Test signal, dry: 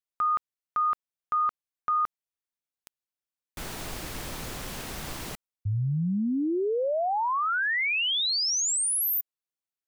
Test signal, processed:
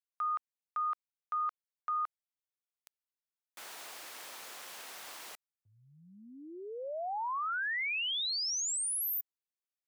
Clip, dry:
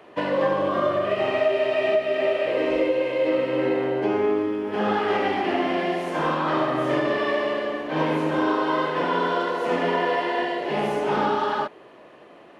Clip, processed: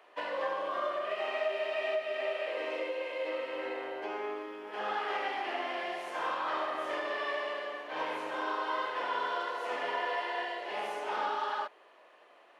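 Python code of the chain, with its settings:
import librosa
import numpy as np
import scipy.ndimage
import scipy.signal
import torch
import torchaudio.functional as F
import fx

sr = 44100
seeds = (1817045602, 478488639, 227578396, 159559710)

y = scipy.signal.sosfilt(scipy.signal.butter(2, 680.0, 'highpass', fs=sr, output='sos'), x)
y = F.gain(torch.from_numpy(y), -7.5).numpy()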